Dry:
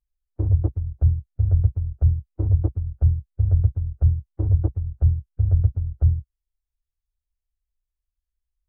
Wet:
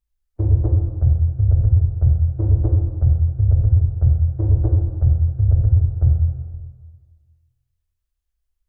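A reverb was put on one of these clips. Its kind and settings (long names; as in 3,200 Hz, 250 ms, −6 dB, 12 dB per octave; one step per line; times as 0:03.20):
dense smooth reverb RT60 1.6 s, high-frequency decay 0.85×, DRR 0 dB
level +2 dB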